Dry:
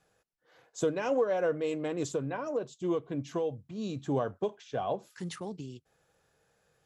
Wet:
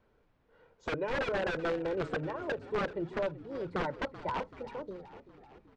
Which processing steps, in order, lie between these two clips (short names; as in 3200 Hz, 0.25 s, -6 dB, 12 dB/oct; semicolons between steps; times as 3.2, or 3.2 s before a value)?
speed glide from 90% -> 148%; notches 60/120/180/240/300 Hz; comb 2.1 ms, depth 70%; added noise pink -68 dBFS; wrapped overs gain 22.5 dB; tape spacing loss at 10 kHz 38 dB; frequency-shifting echo 0.383 s, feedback 60%, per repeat -48 Hz, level -15 dB